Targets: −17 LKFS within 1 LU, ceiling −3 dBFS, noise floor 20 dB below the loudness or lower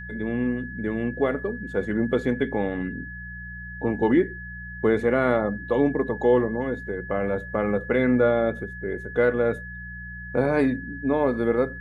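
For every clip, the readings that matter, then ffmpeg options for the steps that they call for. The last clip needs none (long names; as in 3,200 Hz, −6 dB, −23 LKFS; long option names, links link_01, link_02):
mains hum 60 Hz; hum harmonics up to 180 Hz; level of the hum −37 dBFS; interfering tone 1,700 Hz; level of the tone −37 dBFS; integrated loudness −24.5 LKFS; sample peak −8.5 dBFS; target loudness −17.0 LKFS
→ -af "bandreject=frequency=60:width_type=h:width=4,bandreject=frequency=120:width_type=h:width=4,bandreject=frequency=180:width_type=h:width=4"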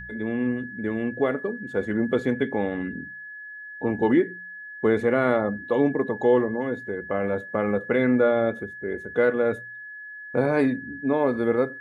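mains hum none found; interfering tone 1,700 Hz; level of the tone −37 dBFS
→ -af "bandreject=frequency=1700:width=30"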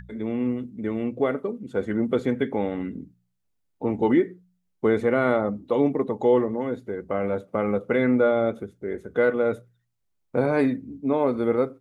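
interfering tone none found; integrated loudness −25.0 LKFS; sample peak −9.5 dBFS; target loudness −17.0 LKFS
→ -af "volume=8dB,alimiter=limit=-3dB:level=0:latency=1"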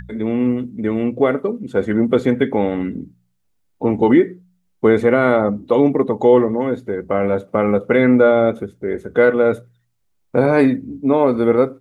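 integrated loudness −17.0 LKFS; sample peak −3.0 dBFS; background noise floor −66 dBFS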